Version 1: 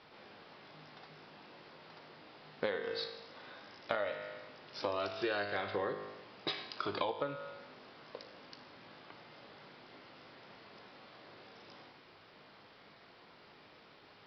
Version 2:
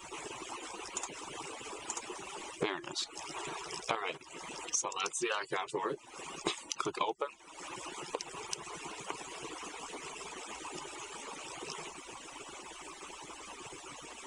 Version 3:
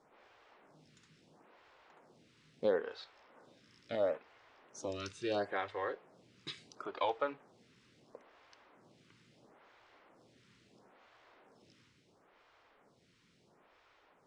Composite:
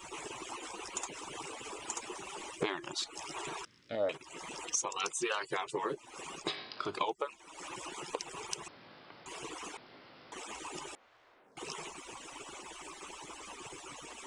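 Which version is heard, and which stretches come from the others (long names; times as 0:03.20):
2
0:03.65–0:04.09: punch in from 3
0:06.45–0:06.91: punch in from 1, crossfade 0.24 s
0:08.68–0:09.26: punch in from 1
0:09.77–0:10.32: punch in from 1
0:10.95–0:11.57: punch in from 3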